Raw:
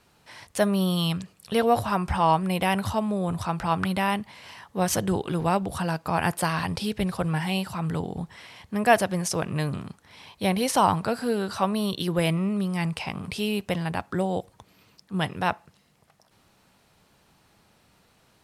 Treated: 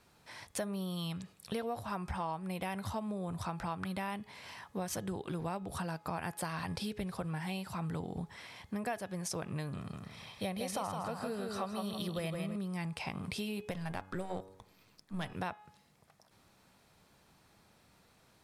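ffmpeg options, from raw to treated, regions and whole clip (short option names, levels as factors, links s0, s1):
-filter_complex "[0:a]asettb=1/sr,asplit=3[s0][s1][s2];[s0]atrim=end=9.774[s3];[s1]atrim=start=9.77:end=12.56,asetpts=PTS-STARTPTS,afade=t=in:d=0.004:c=qsin,afade=t=out:st=2.786:d=0.004:c=qsin,aecho=1:1:1.6:0.33,atrim=end_sample=123039,aecho=1:1:161|322|483|644:0.562|0.18|0.0576|0.0184,atrim=end_sample=123039[s4];[s2]atrim=start=12.556[s5];[s3][s4]acrossfade=d=0.004:c1=hsin:c2=qsin[s6];[s6][s5]acrossfade=d=0.004:c1=qsin:c2=hsin,asettb=1/sr,asplit=3[s7][s8][s9];[s7]atrim=end=13.714[s10];[s8]atrim=start=13.71:end=15.33,asetpts=PTS-STARTPTS,afade=t=in:d=0.004:c=qsin,afade=t=out:st=1.616:d=0.004:c=qsin,aeval=exprs='if(lt(val(0),0),0.447*val(0),val(0))':c=same,bandreject=f=95.17:t=h:w=4,bandreject=f=190.34:t=h:w=4,bandreject=f=285.51:t=h:w=4,bandreject=f=380.68:t=h:w=4,bandreject=f=475.85:t=h:w=4,bandreject=f=571.02:t=h:w=4,bandreject=f=666.19:t=h:w=4,bandreject=f=761.36:t=h:w=4,bandreject=f=856.53:t=h:w=4,bandreject=f=951.7:t=h:w=4,bandreject=f=1046.87:t=h:w=4,bandreject=f=1142.04:t=h:w=4,bandreject=f=1237.21:t=h:w=4,bandreject=f=1332.38:t=h:w=4,bandreject=f=1427.55:t=h:w=4,bandreject=f=1522.72:t=h:w=4,bandreject=f=1617.89:t=h:w=4,bandreject=f=1713.06:t=h:w=4[s11];[s9]atrim=start=15.326[s12];[s10][s11]acrossfade=d=0.004:c1=hsin:c2=qsin[s13];[s13][s12]acrossfade=d=0.004:c1=qsin:c2=hsin,bandreject=f=2900:w=16,bandreject=f=420.8:t=h:w=4,bandreject=f=841.6:t=h:w=4,bandreject=f=1262.4:t=h:w=4,bandreject=f=1683.2:t=h:w=4,bandreject=f=2104:t=h:w=4,bandreject=f=2524.8:t=h:w=4,bandreject=f=2945.6:t=h:w=4,bandreject=f=3366.4:t=h:w=4,bandreject=f=3787.2:t=h:w=4,acompressor=threshold=0.0282:ratio=6,volume=0.631"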